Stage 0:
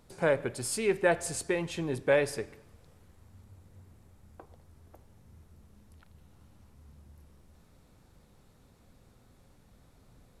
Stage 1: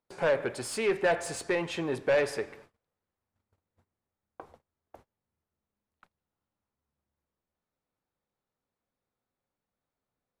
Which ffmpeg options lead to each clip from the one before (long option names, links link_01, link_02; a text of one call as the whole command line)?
ffmpeg -i in.wav -filter_complex "[0:a]asplit=2[link_01][link_02];[link_02]highpass=frequency=720:poles=1,volume=19dB,asoftclip=type=tanh:threshold=-12dB[link_03];[link_01][link_03]amix=inputs=2:normalize=0,lowpass=frequency=2000:poles=1,volume=-6dB,agate=range=-29dB:threshold=-49dB:ratio=16:detection=peak,volume=-4dB" out.wav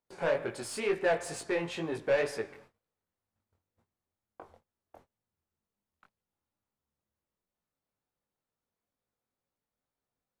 ffmpeg -i in.wav -af "flanger=delay=17.5:depth=5.9:speed=2.1" out.wav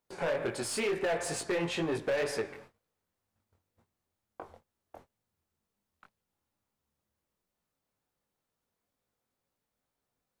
ffmpeg -i in.wav -af "alimiter=level_in=2dB:limit=-24dB:level=0:latency=1:release=59,volume=-2dB,volume=30.5dB,asoftclip=hard,volume=-30.5dB,volume=4.5dB" out.wav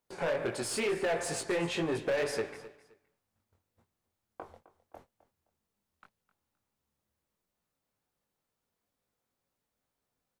ffmpeg -i in.wav -af "aecho=1:1:260|520:0.133|0.032" out.wav